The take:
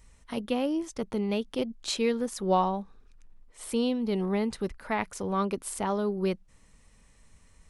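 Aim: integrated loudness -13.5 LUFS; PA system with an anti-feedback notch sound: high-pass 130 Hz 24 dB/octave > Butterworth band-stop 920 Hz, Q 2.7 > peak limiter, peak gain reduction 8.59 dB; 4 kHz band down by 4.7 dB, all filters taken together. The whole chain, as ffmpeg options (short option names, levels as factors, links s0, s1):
-af "highpass=f=130:w=0.5412,highpass=f=130:w=1.3066,asuperstop=centerf=920:order=8:qfactor=2.7,equalizer=f=4000:t=o:g=-6,volume=9.44,alimiter=limit=0.631:level=0:latency=1"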